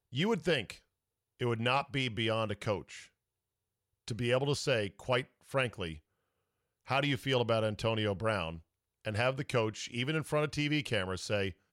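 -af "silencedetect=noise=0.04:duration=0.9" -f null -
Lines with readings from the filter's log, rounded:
silence_start: 2.76
silence_end: 4.11 | silence_duration: 1.35
silence_start: 5.86
silence_end: 6.91 | silence_duration: 1.05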